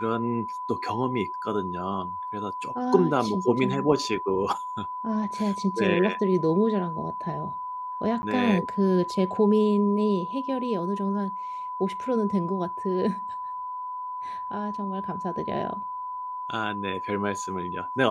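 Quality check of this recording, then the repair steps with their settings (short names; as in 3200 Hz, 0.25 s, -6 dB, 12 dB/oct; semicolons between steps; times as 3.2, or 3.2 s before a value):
tone 1000 Hz -31 dBFS
8.22–8.23 gap 10 ms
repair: notch 1000 Hz, Q 30; interpolate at 8.22, 10 ms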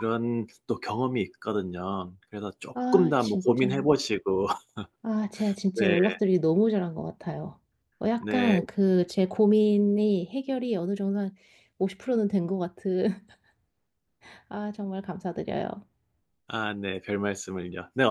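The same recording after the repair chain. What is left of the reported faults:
none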